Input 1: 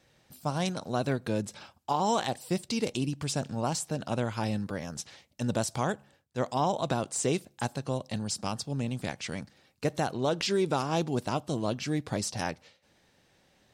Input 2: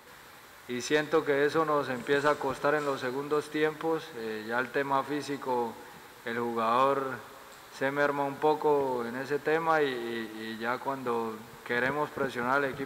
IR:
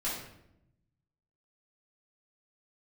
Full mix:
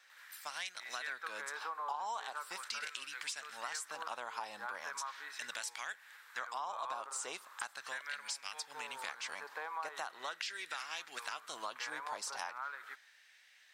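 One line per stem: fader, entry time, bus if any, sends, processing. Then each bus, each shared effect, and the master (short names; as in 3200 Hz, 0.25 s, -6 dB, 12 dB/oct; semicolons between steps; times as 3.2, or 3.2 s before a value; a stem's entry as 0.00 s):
+1.0 dB, 0.00 s, no send, dry
-9.5 dB, 0.10 s, no send, dry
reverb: off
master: LFO high-pass sine 0.39 Hz 950–1900 Hz; compressor 5:1, threshold -39 dBFS, peak gain reduction 19 dB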